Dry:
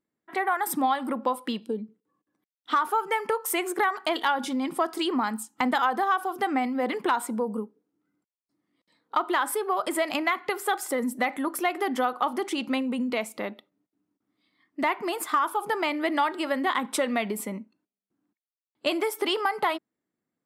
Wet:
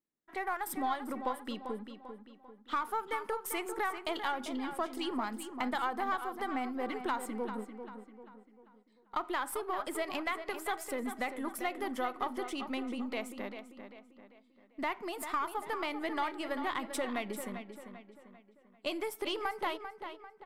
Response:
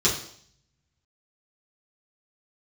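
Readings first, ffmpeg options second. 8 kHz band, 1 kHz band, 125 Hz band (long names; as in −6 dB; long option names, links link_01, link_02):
−9.5 dB, −9.0 dB, can't be measured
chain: -filter_complex "[0:a]aeval=exprs='if(lt(val(0),0),0.708*val(0),val(0))':channel_layout=same,asplit=2[link_01][link_02];[link_02]adelay=394,lowpass=frequency=4300:poles=1,volume=-9dB,asplit=2[link_03][link_04];[link_04]adelay=394,lowpass=frequency=4300:poles=1,volume=0.44,asplit=2[link_05][link_06];[link_06]adelay=394,lowpass=frequency=4300:poles=1,volume=0.44,asplit=2[link_07][link_08];[link_08]adelay=394,lowpass=frequency=4300:poles=1,volume=0.44,asplit=2[link_09][link_10];[link_10]adelay=394,lowpass=frequency=4300:poles=1,volume=0.44[link_11];[link_01][link_03][link_05][link_07][link_09][link_11]amix=inputs=6:normalize=0,volume=-8.5dB"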